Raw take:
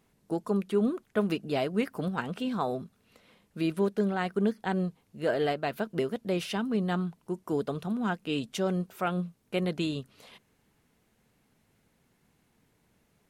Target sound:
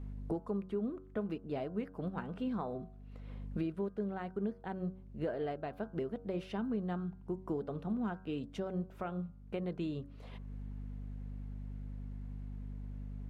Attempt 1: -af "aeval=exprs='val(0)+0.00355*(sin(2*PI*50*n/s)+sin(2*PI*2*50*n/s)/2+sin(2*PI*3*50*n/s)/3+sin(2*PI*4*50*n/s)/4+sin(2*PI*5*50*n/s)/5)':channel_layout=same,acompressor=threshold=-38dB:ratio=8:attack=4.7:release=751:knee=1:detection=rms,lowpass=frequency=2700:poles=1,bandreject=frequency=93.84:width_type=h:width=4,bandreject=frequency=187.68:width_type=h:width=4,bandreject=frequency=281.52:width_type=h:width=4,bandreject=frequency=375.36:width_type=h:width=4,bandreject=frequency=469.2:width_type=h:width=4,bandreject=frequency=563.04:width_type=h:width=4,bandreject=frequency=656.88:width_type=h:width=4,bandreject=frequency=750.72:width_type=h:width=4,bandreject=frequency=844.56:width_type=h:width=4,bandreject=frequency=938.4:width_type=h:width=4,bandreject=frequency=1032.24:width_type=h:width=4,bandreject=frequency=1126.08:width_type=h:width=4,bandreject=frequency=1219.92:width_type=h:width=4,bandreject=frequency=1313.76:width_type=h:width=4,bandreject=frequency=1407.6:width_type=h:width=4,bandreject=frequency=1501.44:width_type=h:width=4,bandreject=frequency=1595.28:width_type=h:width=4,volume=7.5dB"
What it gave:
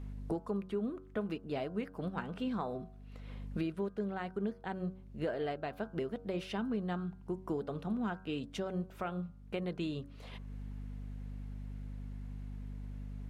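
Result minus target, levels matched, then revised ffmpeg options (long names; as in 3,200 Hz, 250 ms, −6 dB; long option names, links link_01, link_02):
2,000 Hz band +4.0 dB
-af "aeval=exprs='val(0)+0.00355*(sin(2*PI*50*n/s)+sin(2*PI*2*50*n/s)/2+sin(2*PI*3*50*n/s)/3+sin(2*PI*4*50*n/s)/4+sin(2*PI*5*50*n/s)/5)':channel_layout=same,acompressor=threshold=-38dB:ratio=8:attack=4.7:release=751:knee=1:detection=rms,lowpass=frequency=980:poles=1,bandreject=frequency=93.84:width_type=h:width=4,bandreject=frequency=187.68:width_type=h:width=4,bandreject=frequency=281.52:width_type=h:width=4,bandreject=frequency=375.36:width_type=h:width=4,bandreject=frequency=469.2:width_type=h:width=4,bandreject=frequency=563.04:width_type=h:width=4,bandreject=frequency=656.88:width_type=h:width=4,bandreject=frequency=750.72:width_type=h:width=4,bandreject=frequency=844.56:width_type=h:width=4,bandreject=frequency=938.4:width_type=h:width=4,bandreject=frequency=1032.24:width_type=h:width=4,bandreject=frequency=1126.08:width_type=h:width=4,bandreject=frequency=1219.92:width_type=h:width=4,bandreject=frequency=1313.76:width_type=h:width=4,bandreject=frequency=1407.6:width_type=h:width=4,bandreject=frequency=1501.44:width_type=h:width=4,bandreject=frequency=1595.28:width_type=h:width=4,volume=7.5dB"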